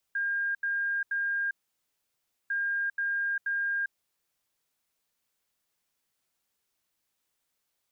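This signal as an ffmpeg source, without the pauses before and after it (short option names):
-f lavfi -i "aevalsrc='0.0473*sin(2*PI*1610*t)*clip(min(mod(mod(t,2.35),0.48),0.4-mod(mod(t,2.35),0.48))/0.005,0,1)*lt(mod(t,2.35),1.44)':d=4.7:s=44100"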